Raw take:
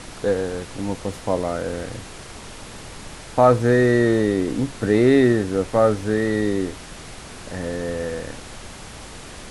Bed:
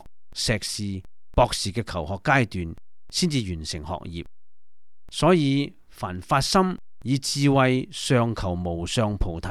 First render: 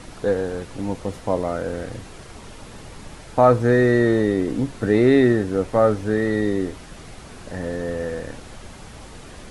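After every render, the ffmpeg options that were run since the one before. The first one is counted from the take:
-af "afftdn=nr=6:nf=-39"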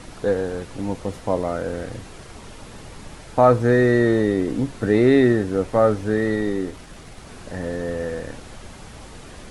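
-filter_complex "[0:a]asettb=1/sr,asplit=3[a][b][c];[a]atrim=end=6.354[d];[b]atrim=start=6.35:end=7.27,asetpts=PTS-STARTPTS,afade=t=in:d=0.004:c=qsin,afade=t=out:st=0.916:d=0.004:c=qsin,aeval=exprs='if(lt(val(0),0),0.708*val(0),val(0))':c=same[e];[c]atrim=start=7.266[f];[d][e]acrossfade=d=0.004:c1=hsin:c2=qsin[g];[g][f]acrossfade=d=0.004:c1=qsin:c2=hsin"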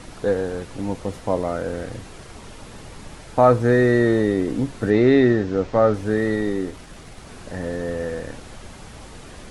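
-filter_complex "[0:a]asettb=1/sr,asplit=3[a][b][c];[a]atrim=end=4.904[d];[b]atrim=start=4.9:end=5.94,asetpts=PTS-STARTPTS,afade=t=in:d=0.004:c=qsin,afade=t=out:st=1.036:d=0.004:c=qsin,lowpass=f=6.5k:w=0.5412,lowpass=f=6.5k:w=1.3066[e];[c]atrim=start=5.936[f];[d][e]acrossfade=d=0.004:c1=hsin:c2=qsin[g];[g][f]acrossfade=d=0.004:c1=qsin:c2=hsin"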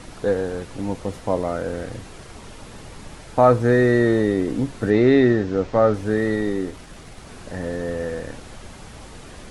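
-af anull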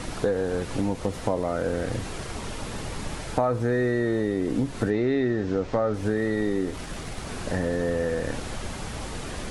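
-filter_complex "[0:a]asplit=2[a][b];[b]alimiter=limit=-14dB:level=0:latency=1:release=30,volume=0dB[c];[a][c]amix=inputs=2:normalize=0,acompressor=threshold=-22dB:ratio=5"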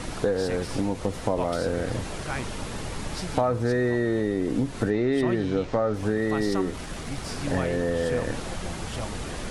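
-filter_complex "[1:a]volume=-13.5dB[a];[0:a][a]amix=inputs=2:normalize=0"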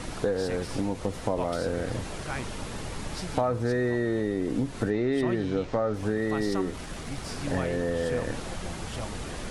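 -af "volume=-2.5dB"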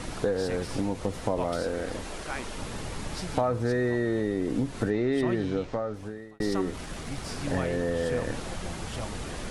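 -filter_complex "[0:a]asettb=1/sr,asplit=3[a][b][c];[a]atrim=end=1.624[d];[b]atrim=start=1.62:end=2.57,asetpts=PTS-STARTPTS,afade=t=in:d=0.004:c=qsin,afade=t=out:st=0.946:d=0.004:c=qsin,equalizer=f=120:w=1.5:g=-12.5[e];[c]atrim=start=2.566[f];[d][e]acrossfade=d=0.004:c1=hsin:c2=qsin[g];[g][f]acrossfade=d=0.004:c1=qsin:c2=hsin,asplit=2[h][i];[h]atrim=end=6.4,asetpts=PTS-STARTPTS,afade=t=out:st=5.44:d=0.96[j];[i]atrim=start=6.4,asetpts=PTS-STARTPTS,afade=t=in:d=0.004:c=hsin[k];[j][k]concat=n=2:v=0:a=1"

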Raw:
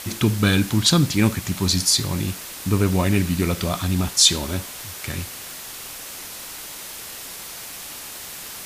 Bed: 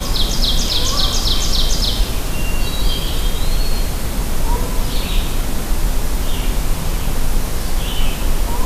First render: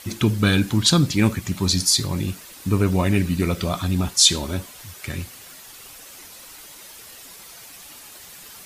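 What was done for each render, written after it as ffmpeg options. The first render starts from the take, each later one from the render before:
-af "afftdn=nr=9:nf=-36"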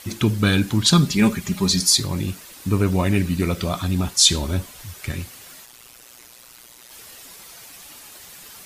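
-filter_complex "[0:a]asettb=1/sr,asplit=3[a][b][c];[a]atrim=end=0.924[d];[b]atrim=start=0.92:end=2,asetpts=PTS-STARTPTS,afade=t=in:d=0.004:c=qsin,afade=t=out:st=1.076:d=0.004:c=qsin,aecho=1:1:4.9:0.65,atrim=end_sample=47628[e];[c]atrim=start=1.996[f];[d][e]acrossfade=d=0.004:c1=hsin:c2=qsin[g];[g][f]acrossfade=d=0.004:c1=qsin:c2=hsin,asettb=1/sr,asplit=3[h][i][j];[h]atrim=end=4.244[k];[i]atrim=start=4.24:end=5.12,asetpts=PTS-STARTPTS,afade=t=in:d=0.004:c=qsin,afade=t=out:st=0.876:d=0.004:c=qsin,lowshelf=f=96:g=9.5[l];[j]atrim=start=5.116[m];[k][l]acrossfade=d=0.004:c1=hsin:c2=qsin[n];[n][m]acrossfade=d=0.004:c1=qsin:c2=hsin,asplit=3[o][p][q];[o]afade=t=out:st=5.64:d=0.02[r];[p]tremolo=f=120:d=0.919,afade=t=in:st=5.64:d=0.02,afade=t=out:st=6.9:d=0.02[s];[q]afade=t=in:st=6.9:d=0.02[t];[r][s][t]amix=inputs=3:normalize=0"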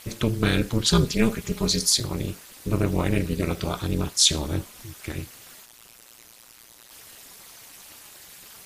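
-af "tremolo=f=230:d=0.947"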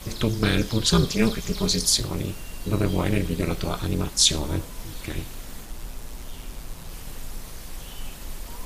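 -filter_complex "[1:a]volume=-19dB[a];[0:a][a]amix=inputs=2:normalize=0"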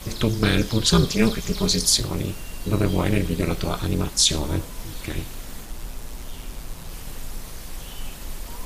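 -af "volume=2dB,alimiter=limit=-3dB:level=0:latency=1"

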